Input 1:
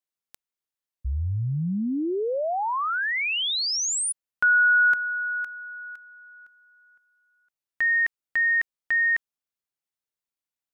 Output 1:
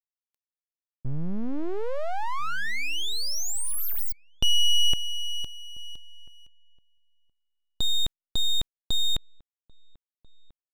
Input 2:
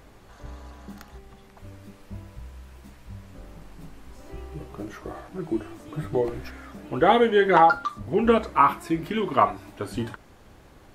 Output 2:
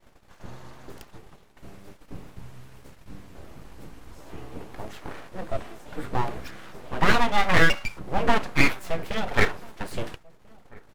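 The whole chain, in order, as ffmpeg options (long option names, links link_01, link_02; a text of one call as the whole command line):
ffmpeg -i in.wav -filter_complex "[0:a]aeval=exprs='abs(val(0))':channel_layout=same,agate=range=-33dB:threshold=-46dB:ratio=3:release=73:detection=peak,asplit=2[link_01][link_02];[link_02]adelay=1341,volume=-25dB,highshelf=frequency=4000:gain=-30.2[link_03];[link_01][link_03]amix=inputs=2:normalize=0,volume=1.5dB" out.wav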